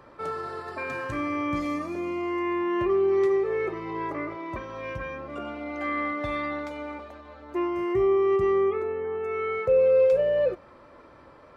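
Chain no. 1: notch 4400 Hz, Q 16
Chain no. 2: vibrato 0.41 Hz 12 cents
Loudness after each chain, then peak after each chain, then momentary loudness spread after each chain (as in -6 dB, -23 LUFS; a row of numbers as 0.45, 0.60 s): -26.5, -26.5 LUFS; -13.0, -13.0 dBFS; 14, 14 LU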